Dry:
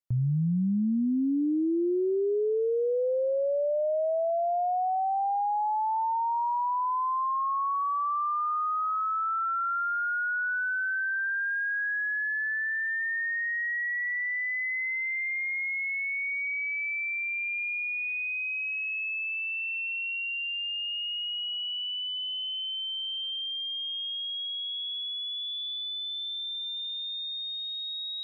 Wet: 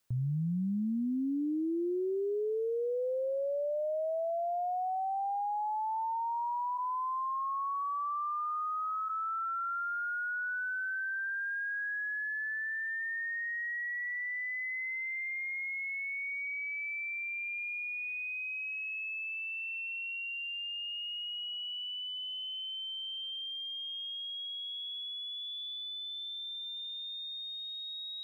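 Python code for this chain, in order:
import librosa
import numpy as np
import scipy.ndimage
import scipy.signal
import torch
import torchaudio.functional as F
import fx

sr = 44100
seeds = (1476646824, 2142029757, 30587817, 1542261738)

y = fx.steep_lowpass(x, sr, hz=2000.0, slope=48, at=(6.77, 9.08), fade=0.02)
y = fx.quant_dither(y, sr, seeds[0], bits=12, dither='triangular')
y = y * librosa.db_to_amplitude(-6.0)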